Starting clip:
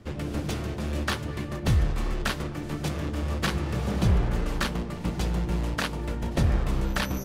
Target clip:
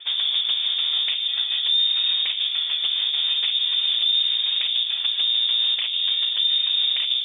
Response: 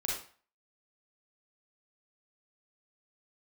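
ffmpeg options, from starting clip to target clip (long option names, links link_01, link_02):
-filter_complex "[0:a]highpass=frequency=50:poles=1,bandreject=frequency=75.76:width_type=h:width=4,bandreject=frequency=151.52:width_type=h:width=4,bandreject=frequency=227.28:width_type=h:width=4,bandreject=frequency=303.04:width_type=h:width=4,bandreject=frequency=378.8:width_type=h:width=4,bandreject=frequency=454.56:width_type=h:width=4,bandreject=frequency=530.32:width_type=h:width=4,bandreject=frequency=606.08:width_type=h:width=4,bandreject=frequency=681.84:width_type=h:width=4,bandreject=frequency=757.6:width_type=h:width=4,bandreject=frequency=833.36:width_type=h:width=4,bandreject=frequency=909.12:width_type=h:width=4,bandreject=frequency=984.88:width_type=h:width=4,bandreject=frequency=1060.64:width_type=h:width=4,bandreject=frequency=1136.4:width_type=h:width=4,bandreject=frequency=1212.16:width_type=h:width=4,bandreject=frequency=1287.92:width_type=h:width=4,bandreject=frequency=1363.68:width_type=h:width=4,bandreject=frequency=1439.44:width_type=h:width=4,bandreject=frequency=1515.2:width_type=h:width=4,bandreject=frequency=1590.96:width_type=h:width=4,bandreject=frequency=1666.72:width_type=h:width=4,acrossover=split=560|1000[link_01][link_02][link_03];[link_03]acompressor=threshold=-45dB:ratio=6[link_04];[link_01][link_02][link_04]amix=inputs=3:normalize=0,lowpass=frequency=3100:width_type=q:width=0.5098,lowpass=frequency=3100:width_type=q:width=0.6013,lowpass=frequency=3100:width_type=q:width=0.9,lowpass=frequency=3100:width_type=q:width=2.563,afreqshift=-3700,alimiter=limit=-24dB:level=0:latency=1:release=176,crystalizer=i=3:c=0,volume=5dB"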